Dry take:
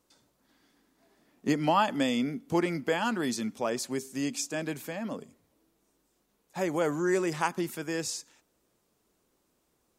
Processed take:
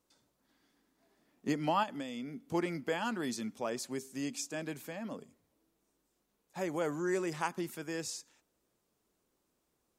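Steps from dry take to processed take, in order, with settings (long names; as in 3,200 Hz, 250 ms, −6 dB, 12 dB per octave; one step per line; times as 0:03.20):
0:01.83–0:02.54: downward compressor 5 to 1, threshold −32 dBFS, peak gain reduction 9 dB
level −6 dB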